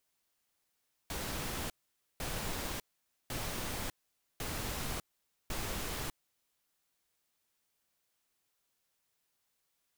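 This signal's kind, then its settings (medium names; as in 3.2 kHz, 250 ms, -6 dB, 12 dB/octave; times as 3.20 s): noise bursts pink, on 0.60 s, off 0.50 s, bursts 5, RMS -38 dBFS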